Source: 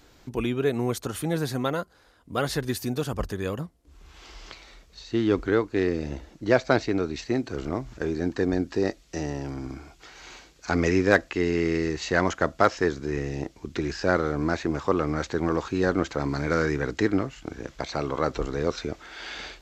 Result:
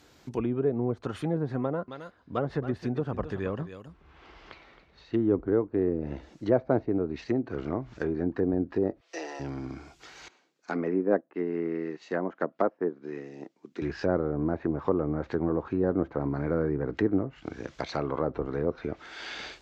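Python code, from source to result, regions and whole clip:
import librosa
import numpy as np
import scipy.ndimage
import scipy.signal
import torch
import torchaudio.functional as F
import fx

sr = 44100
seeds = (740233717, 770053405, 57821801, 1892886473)

y = fx.chain(x, sr, fx.env_lowpass(base_hz=1600.0, full_db=-25.5),
    fx.echo_single(ms=268, db=-13.0), at=(1.61, 5.33))
y = fx.chain(y, sr, fx.highpass(hz=440.0, slope=24),
    fx.peak_eq(hz=7600.0, db=-4.5, octaves=1.0),
    fx.comb(ms=6.0, depth=0.82), at=(9.0, 9.4))
y = fx.chain(y, sr, fx.highpass(hz=180.0, slope=24),
    fx.high_shelf(hz=2800.0, db=-8.5),
    fx.upward_expand(threshold_db=-44.0, expansion=1.5), at=(10.28, 13.82))
y = fx.env_lowpass_down(y, sr, base_hz=720.0, full_db=-22.0)
y = scipy.signal.sosfilt(scipy.signal.butter(2, 76.0, 'highpass', fs=sr, output='sos'), y)
y = y * 10.0 ** (-1.5 / 20.0)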